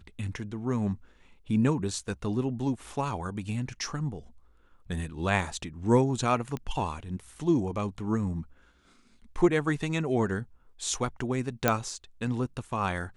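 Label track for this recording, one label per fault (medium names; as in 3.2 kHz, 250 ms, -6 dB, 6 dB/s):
6.570000	6.570000	pop -22 dBFS
11.680000	11.680000	pop -7 dBFS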